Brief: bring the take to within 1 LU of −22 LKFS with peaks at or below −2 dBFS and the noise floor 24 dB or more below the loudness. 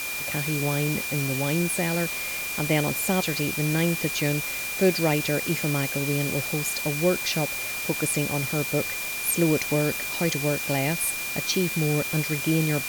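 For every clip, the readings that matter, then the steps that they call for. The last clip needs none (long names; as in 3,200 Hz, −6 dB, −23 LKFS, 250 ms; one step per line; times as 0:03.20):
interfering tone 2,400 Hz; level of the tone −31 dBFS; background noise floor −31 dBFS; target noise floor −49 dBFS; integrated loudness −24.5 LKFS; sample peak −9.0 dBFS; target loudness −22.0 LKFS
→ notch filter 2,400 Hz, Q 30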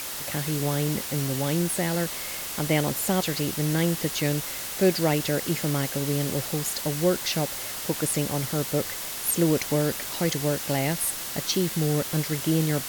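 interfering tone none found; background noise floor −34 dBFS; target noise floor −50 dBFS
→ noise reduction from a noise print 16 dB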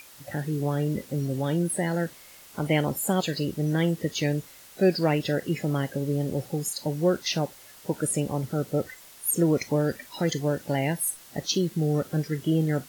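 background noise floor −50 dBFS; target noise floor −51 dBFS
→ noise reduction from a noise print 6 dB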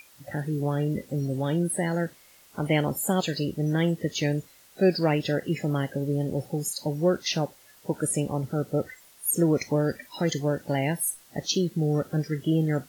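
background noise floor −55 dBFS; integrated loudness −27.0 LKFS; sample peak −10.5 dBFS; target loudness −22.0 LKFS
→ level +5 dB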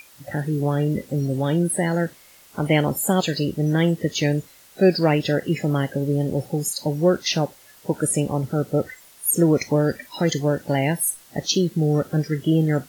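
integrated loudness −22.0 LKFS; sample peak −5.5 dBFS; background noise floor −50 dBFS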